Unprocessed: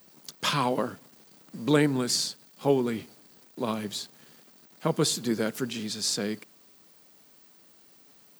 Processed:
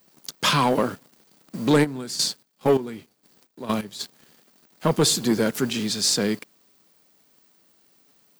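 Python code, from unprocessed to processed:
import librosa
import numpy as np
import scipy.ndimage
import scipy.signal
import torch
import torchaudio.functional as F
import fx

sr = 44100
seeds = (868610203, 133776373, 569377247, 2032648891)

y = fx.leveller(x, sr, passes=2)
y = fx.step_gate(y, sr, bpm=130, pattern='.xx..x...', floor_db=-12.0, edge_ms=4.5, at=(1.83, 3.99), fade=0.02)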